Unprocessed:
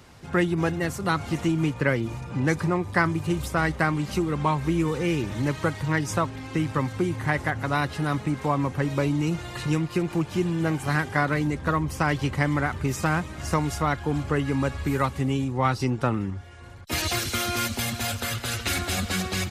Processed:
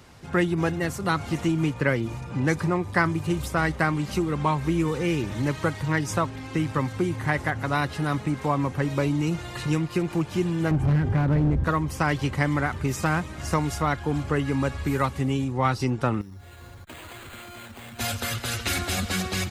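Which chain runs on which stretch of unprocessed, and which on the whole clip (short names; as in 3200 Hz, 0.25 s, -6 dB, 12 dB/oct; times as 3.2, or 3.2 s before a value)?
10.71–11.64 tilt -4.5 dB/oct + compressor 2.5:1, threshold -18 dBFS + hard clip -17 dBFS
16.21–17.99 careless resampling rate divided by 8×, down none, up hold + compressor 12:1, threshold -38 dBFS
whole clip: dry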